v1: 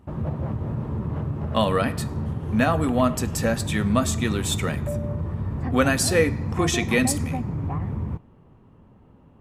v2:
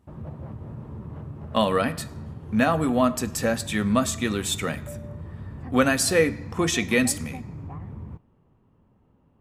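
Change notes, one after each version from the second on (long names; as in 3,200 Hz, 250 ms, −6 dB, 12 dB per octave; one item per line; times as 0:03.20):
background −9.5 dB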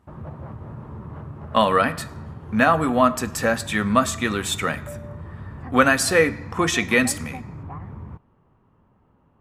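background: send off
master: add parametric band 1,300 Hz +8 dB 1.8 octaves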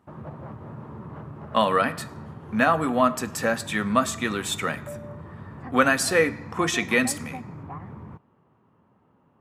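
speech −3.0 dB
master: add high-pass filter 130 Hz 12 dB per octave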